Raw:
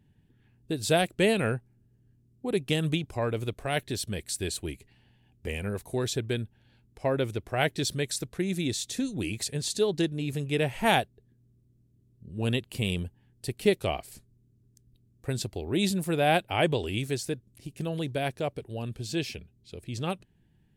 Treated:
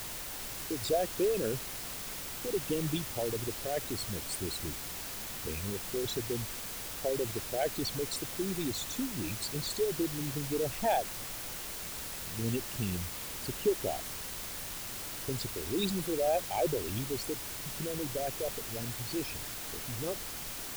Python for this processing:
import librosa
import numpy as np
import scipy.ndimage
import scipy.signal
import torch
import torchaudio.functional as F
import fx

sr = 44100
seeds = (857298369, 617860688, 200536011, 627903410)

y = fx.envelope_sharpen(x, sr, power=3.0)
y = fx.quant_dither(y, sr, seeds[0], bits=6, dither='triangular')
y = fx.dmg_noise_colour(y, sr, seeds[1], colour='pink', level_db=-42.0)
y = F.gain(torch.from_numpy(y), -5.5).numpy()